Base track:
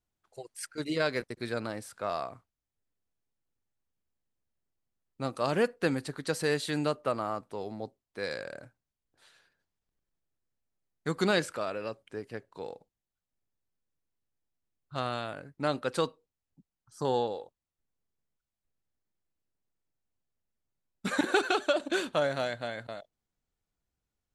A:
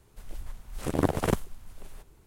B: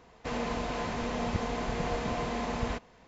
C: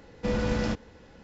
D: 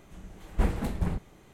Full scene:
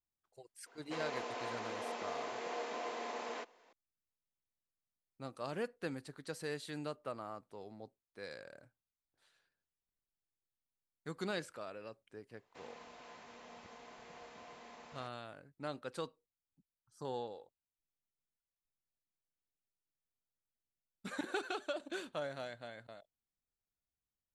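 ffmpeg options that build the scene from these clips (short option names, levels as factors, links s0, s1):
-filter_complex "[2:a]asplit=2[s0][s1];[0:a]volume=0.237[s2];[s0]highpass=f=330:w=0.5412,highpass=f=330:w=1.3066[s3];[s1]highpass=f=660:p=1[s4];[s3]atrim=end=3.07,asetpts=PTS-STARTPTS,volume=0.447,afade=t=in:d=0.004:c=hsin,afade=t=out:st=3.066:d=0.004:c=hsin,adelay=660[s5];[s4]atrim=end=3.07,asetpts=PTS-STARTPTS,volume=0.133,afade=t=in:d=0.004:c=hsin,afade=t=out:st=3.066:d=0.004:c=hsin,adelay=12300[s6];[s2][s5][s6]amix=inputs=3:normalize=0"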